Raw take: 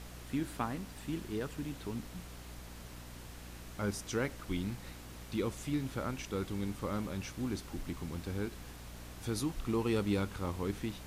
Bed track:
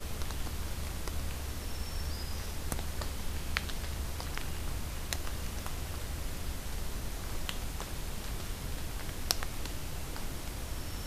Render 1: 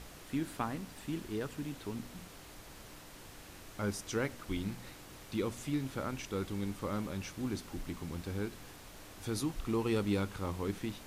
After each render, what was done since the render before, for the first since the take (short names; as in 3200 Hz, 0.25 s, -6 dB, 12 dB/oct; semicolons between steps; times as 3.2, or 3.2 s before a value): de-hum 60 Hz, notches 4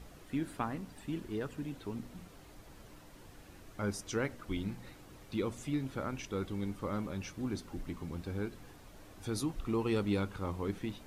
denoiser 8 dB, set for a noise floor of -52 dBFS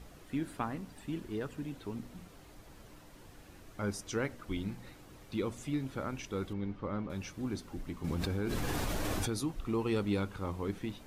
6.53–7.1 air absorption 230 m; 8.04–9.33 fast leveller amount 100%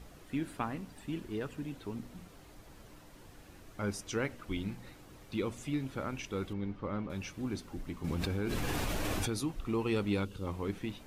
dynamic EQ 2600 Hz, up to +4 dB, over -58 dBFS, Q 2.4; 10.25–10.47 spectral gain 580–2600 Hz -11 dB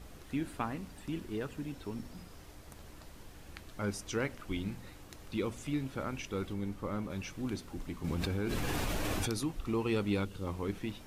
add bed track -18 dB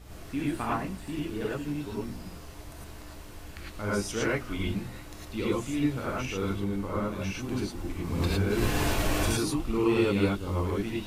non-linear reverb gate 0.13 s rising, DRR -6.5 dB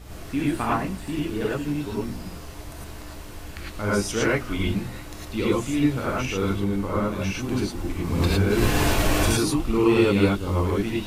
gain +6 dB